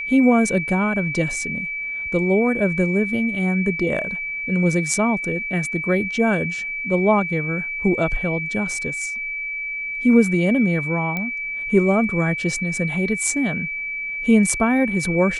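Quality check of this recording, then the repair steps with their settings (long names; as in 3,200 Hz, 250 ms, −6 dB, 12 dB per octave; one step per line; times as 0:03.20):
whistle 2,300 Hz −25 dBFS
0:11.17: click −13 dBFS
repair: click removal
notch filter 2,300 Hz, Q 30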